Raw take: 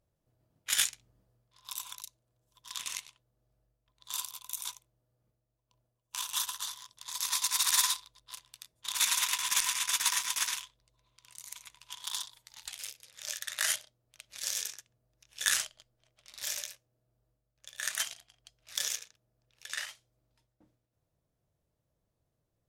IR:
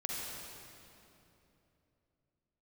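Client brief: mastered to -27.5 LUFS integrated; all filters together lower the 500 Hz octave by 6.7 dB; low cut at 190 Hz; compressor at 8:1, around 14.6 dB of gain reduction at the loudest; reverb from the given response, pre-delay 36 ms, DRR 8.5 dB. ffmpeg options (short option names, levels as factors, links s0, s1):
-filter_complex "[0:a]highpass=190,equalizer=f=500:t=o:g=-9,acompressor=threshold=0.0126:ratio=8,asplit=2[s0][s1];[1:a]atrim=start_sample=2205,adelay=36[s2];[s1][s2]afir=irnorm=-1:irlink=0,volume=0.266[s3];[s0][s3]amix=inputs=2:normalize=0,volume=5.62"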